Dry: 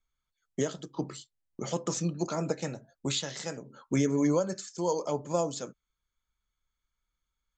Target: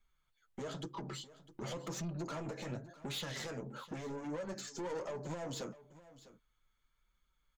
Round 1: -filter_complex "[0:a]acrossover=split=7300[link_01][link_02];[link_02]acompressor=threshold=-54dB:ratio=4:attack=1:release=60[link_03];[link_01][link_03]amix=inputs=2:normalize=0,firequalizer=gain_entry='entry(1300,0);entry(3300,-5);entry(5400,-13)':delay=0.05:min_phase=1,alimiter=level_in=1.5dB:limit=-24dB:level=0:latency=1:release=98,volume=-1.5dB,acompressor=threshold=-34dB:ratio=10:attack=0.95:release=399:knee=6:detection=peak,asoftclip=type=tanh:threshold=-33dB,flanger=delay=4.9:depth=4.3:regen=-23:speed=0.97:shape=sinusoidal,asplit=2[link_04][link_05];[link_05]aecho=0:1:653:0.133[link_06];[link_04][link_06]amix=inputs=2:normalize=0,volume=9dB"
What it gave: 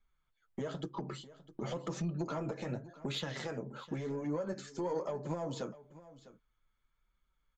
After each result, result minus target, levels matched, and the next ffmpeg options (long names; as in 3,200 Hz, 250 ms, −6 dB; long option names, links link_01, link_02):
soft clipping: distortion −12 dB; 8,000 Hz band −8.0 dB
-filter_complex "[0:a]acrossover=split=7300[link_01][link_02];[link_02]acompressor=threshold=-54dB:ratio=4:attack=1:release=60[link_03];[link_01][link_03]amix=inputs=2:normalize=0,firequalizer=gain_entry='entry(1300,0);entry(3300,-5);entry(5400,-13)':delay=0.05:min_phase=1,alimiter=level_in=1.5dB:limit=-24dB:level=0:latency=1:release=98,volume=-1.5dB,acompressor=threshold=-34dB:ratio=10:attack=0.95:release=399:knee=6:detection=peak,asoftclip=type=tanh:threshold=-43dB,flanger=delay=4.9:depth=4.3:regen=-23:speed=0.97:shape=sinusoidal,asplit=2[link_04][link_05];[link_05]aecho=0:1:653:0.133[link_06];[link_04][link_06]amix=inputs=2:normalize=0,volume=9dB"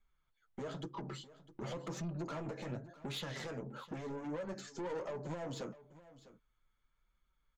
8,000 Hz band −5.5 dB
-filter_complex "[0:a]acrossover=split=7300[link_01][link_02];[link_02]acompressor=threshold=-54dB:ratio=4:attack=1:release=60[link_03];[link_01][link_03]amix=inputs=2:normalize=0,firequalizer=gain_entry='entry(1300,0);entry(3300,-5);entry(5400,-13)':delay=0.05:min_phase=1,alimiter=level_in=1.5dB:limit=-24dB:level=0:latency=1:release=98,volume=-1.5dB,acompressor=threshold=-34dB:ratio=10:attack=0.95:release=399:knee=6:detection=peak,highshelf=frequency=3600:gain=9.5,asoftclip=type=tanh:threshold=-43dB,flanger=delay=4.9:depth=4.3:regen=-23:speed=0.97:shape=sinusoidal,asplit=2[link_04][link_05];[link_05]aecho=0:1:653:0.133[link_06];[link_04][link_06]amix=inputs=2:normalize=0,volume=9dB"